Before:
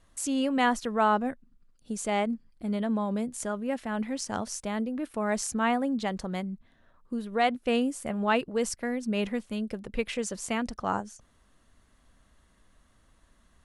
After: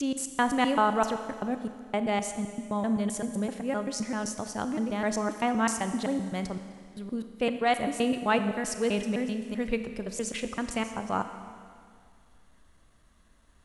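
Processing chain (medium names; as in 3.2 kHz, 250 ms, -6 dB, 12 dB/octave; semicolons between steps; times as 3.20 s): slices played last to first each 129 ms, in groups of 3; Schroeder reverb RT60 2.1 s, combs from 28 ms, DRR 8.5 dB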